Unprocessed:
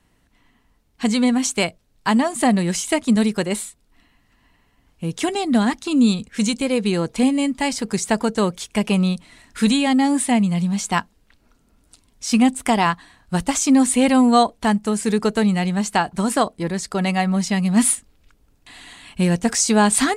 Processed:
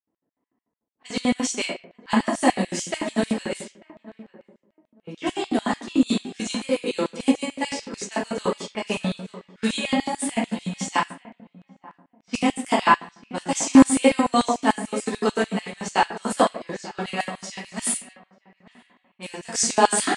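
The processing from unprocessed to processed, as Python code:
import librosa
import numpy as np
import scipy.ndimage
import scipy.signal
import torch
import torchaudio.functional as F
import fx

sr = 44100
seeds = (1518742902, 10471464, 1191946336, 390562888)

y = fx.notch(x, sr, hz=4000.0, q=20.0)
y = fx.echo_feedback(y, sr, ms=893, feedback_pct=21, wet_db=-13.0)
y = fx.room_shoebox(y, sr, seeds[0], volume_m3=120.0, walls='mixed', distance_m=1.5)
y = fx.env_lowpass(y, sr, base_hz=580.0, full_db=-10.0)
y = fx.low_shelf(y, sr, hz=450.0, db=-10.0, at=(17.29, 19.55))
y = fx.filter_lfo_highpass(y, sr, shape='square', hz=6.8, low_hz=310.0, high_hz=2800.0, q=0.8)
y = scipy.signal.sosfilt(scipy.signal.butter(4, 9700.0, 'lowpass', fs=sr, output='sos'), y)
y = fx.upward_expand(y, sr, threshold_db=-29.0, expansion=1.5)
y = y * librosa.db_to_amplitude(-2.0)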